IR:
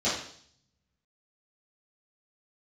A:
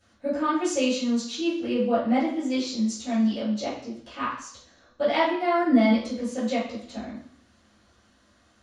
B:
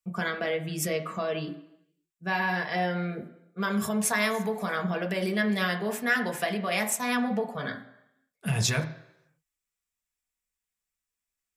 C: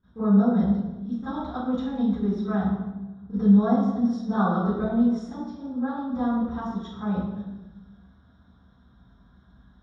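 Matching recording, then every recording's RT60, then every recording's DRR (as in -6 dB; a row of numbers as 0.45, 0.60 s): A; 0.60 s, not exponential, 1.1 s; -12.5, 3.0, -21.0 dB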